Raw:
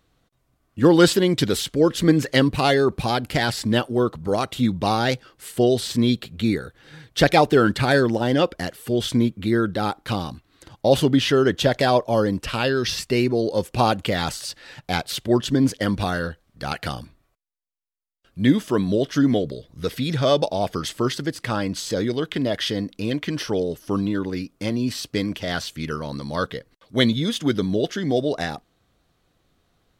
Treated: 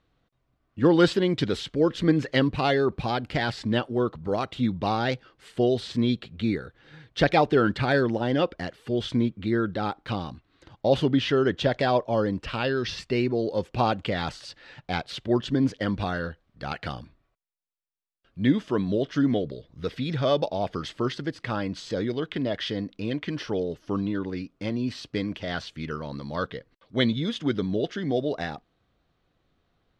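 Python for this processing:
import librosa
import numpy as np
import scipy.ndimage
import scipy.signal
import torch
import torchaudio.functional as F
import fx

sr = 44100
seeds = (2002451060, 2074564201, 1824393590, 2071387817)

y = scipy.signal.sosfilt(scipy.signal.butter(2, 4000.0, 'lowpass', fs=sr, output='sos'), x)
y = y * librosa.db_to_amplitude(-4.5)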